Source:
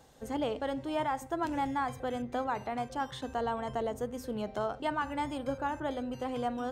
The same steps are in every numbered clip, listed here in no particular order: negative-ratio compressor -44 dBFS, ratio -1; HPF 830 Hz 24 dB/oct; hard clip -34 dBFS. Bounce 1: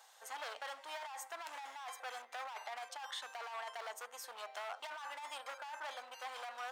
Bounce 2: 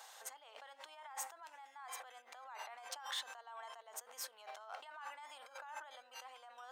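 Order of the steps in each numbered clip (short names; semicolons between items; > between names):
hard clip > HPF > negative-ratio compressor; negative-ratio compressor > hard clip > HPF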